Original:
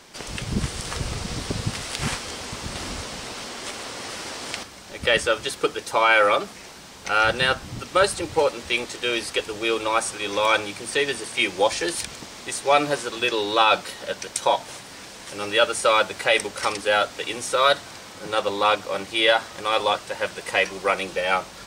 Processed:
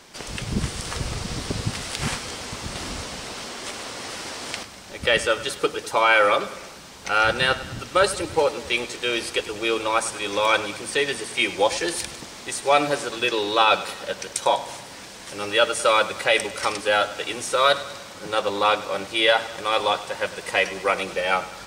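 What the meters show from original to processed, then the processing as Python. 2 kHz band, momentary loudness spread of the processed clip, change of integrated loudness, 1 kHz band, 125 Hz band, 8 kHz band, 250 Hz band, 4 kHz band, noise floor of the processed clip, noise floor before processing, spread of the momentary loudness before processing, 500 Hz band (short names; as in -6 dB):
0.0 dB, 13 LU, 0.0 dB, 0.0 dB, 0.0 dB, 0.0 dB, 0.0 dB, 0.0 dB, -41 dBFS, -42 dBFS, 13 LU, 0.0 dB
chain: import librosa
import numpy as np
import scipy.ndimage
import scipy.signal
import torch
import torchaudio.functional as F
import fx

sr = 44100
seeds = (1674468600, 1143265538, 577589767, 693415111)

y = fx.echo_feedback(x, sr, ms=100, feedback_pct=55, wet_db=-16)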